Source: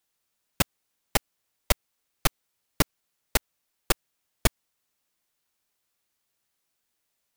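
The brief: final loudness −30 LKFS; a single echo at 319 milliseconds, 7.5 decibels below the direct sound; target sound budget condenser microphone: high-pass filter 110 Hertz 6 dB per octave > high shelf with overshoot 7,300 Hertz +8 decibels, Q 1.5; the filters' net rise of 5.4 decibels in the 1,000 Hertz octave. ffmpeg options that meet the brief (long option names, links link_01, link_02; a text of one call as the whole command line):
ffmpeg -i in.wav -af "highpass=frequency=110:poles=1,equalizer=frequency=1000:width_type=o:gain=7,highshelf=frequency=7300:width_type=q:width=1.5:gain=8,aecho=1:1:319:0.422,volume=-5dB" out.wav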